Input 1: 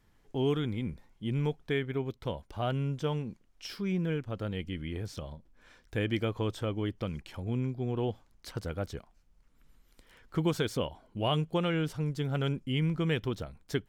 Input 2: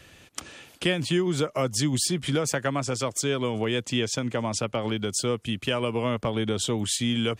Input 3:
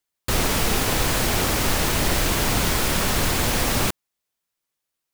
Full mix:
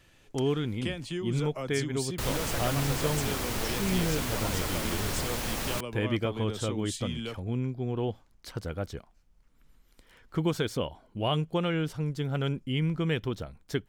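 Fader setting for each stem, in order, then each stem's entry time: +1.0 dB, -10.5 dB, -11.0 dB; 0.00 s, 0.00 s, 1.90 s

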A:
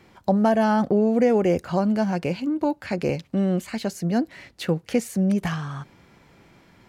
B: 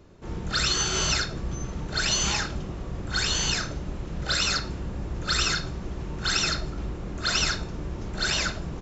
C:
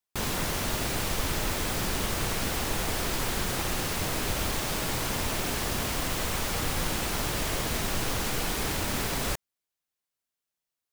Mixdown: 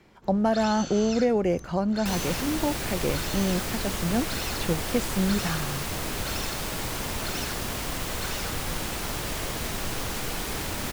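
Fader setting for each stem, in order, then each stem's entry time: -4.0 dB, -12.5 dB, -1.5 dB; 0.00 s, 0.00 s, 1.90 s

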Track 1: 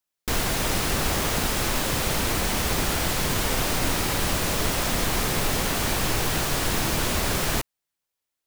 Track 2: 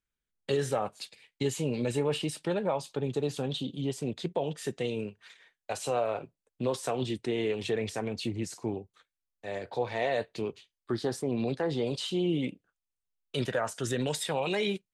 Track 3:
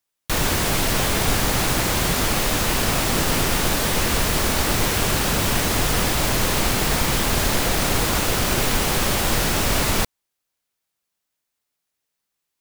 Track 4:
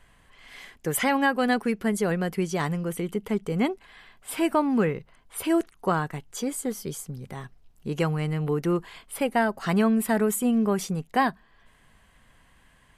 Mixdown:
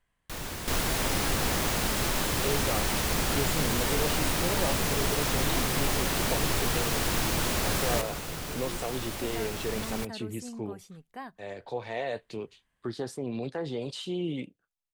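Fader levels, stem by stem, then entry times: -4.0 dB, -3.5 dB, -16.0 dB, -19.0 dB; 0.40 s, 1.95 s, 0.00 s, 0.00 s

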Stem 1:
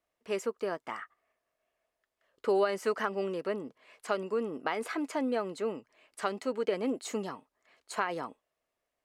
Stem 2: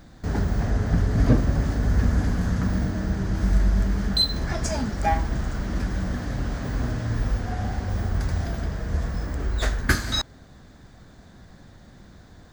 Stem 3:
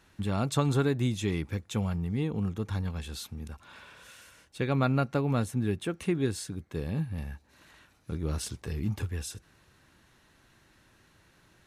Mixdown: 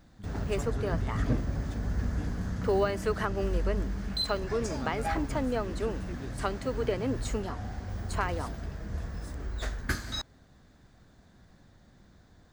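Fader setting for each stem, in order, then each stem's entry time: 0.0 dB, -10.0 dB, -15.5 dB; 0.20 s, 0.00 s, 0.00 s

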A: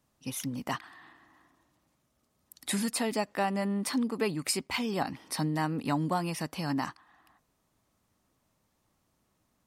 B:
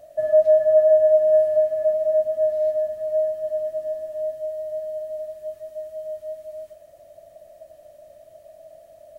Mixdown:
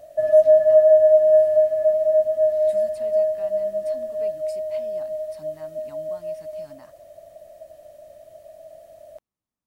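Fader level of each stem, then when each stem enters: -18.5 dB, +2.0 dB; 0.00 s, 0.00 s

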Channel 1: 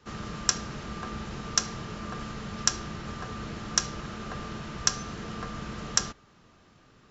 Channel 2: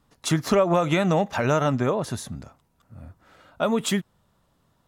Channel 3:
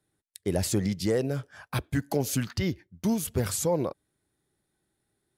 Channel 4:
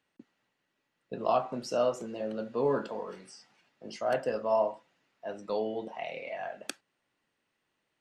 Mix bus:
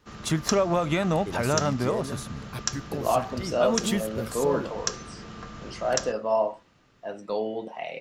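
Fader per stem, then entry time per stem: -4.0 dB, -3.5 dB, -7.0 dB, +3.0 dB; 0.00 s, 0.00 s, 0.80 s, 1.80 s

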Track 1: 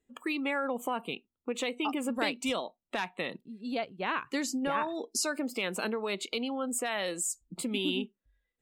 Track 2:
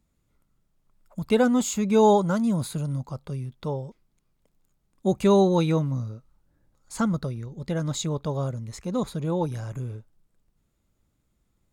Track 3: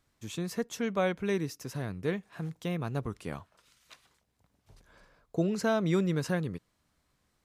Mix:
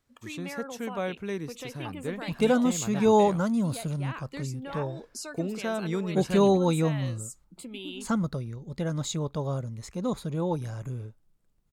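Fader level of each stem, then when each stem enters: -8.0 dB, -2.5 dB, -3.0 dB; 0.00 s, 1.10 s, 0.00 s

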